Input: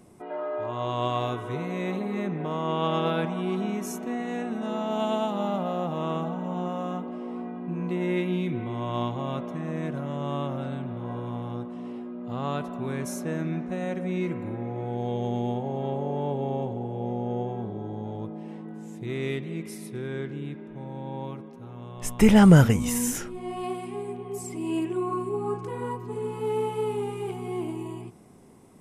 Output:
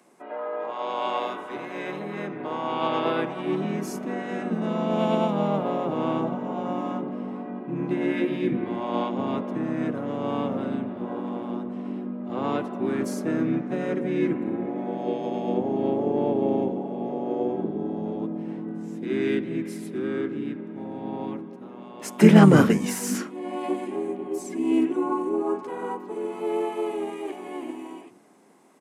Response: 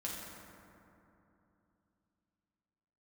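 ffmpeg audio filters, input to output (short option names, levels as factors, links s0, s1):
-filter_complex "[0:a]highpass=f=250:w=0.5412,highpass=f=250:w=1.3066,equalizer=f=1600:w=0.5:g=6,bandreject=f=60:t=h:w=6,bandreject=f=120:t=h:w=6,bandreject=f=180:t=h:w=6,bandreject=f=240:t=h:w=6,bandreject=f=300:t=h:w=6,bandreject=f=360:t=h:w=6,bandreject=f=420:t=h:w=6,bandreject=f=480:t=h:w=6,bandreject=f=540:t=h:w=6,acrossover=split=360|1400[s0][s1][s2];[s0]dynaudnorm=f=660:g=11:m=6.31[s3];[s3][s1][s2]amix=inputs=3:normalize=0,asplit=3[s4][s5][s6];[s5]asetrate=35002,aresample=44100,atempo=1.25992,volume=0.631[s7];[s6]asetrate=58866,aresample=44100,atempo=0.749154,volume=0.126[s8];[s4][s7][s8]amix=inputs=3:normalize=0,asplit=2[s9][s10];[1:a]atrim=start_sample=2205,afade=t=out:st=0.15:d=0.01,atrim=end_sample=7056[s11];[s10][s11]afir=irnorm=-1:irlink=0,volume=0.112[s12];[s9][s12]amix=inputs=2:normalize=0,volume=0.562"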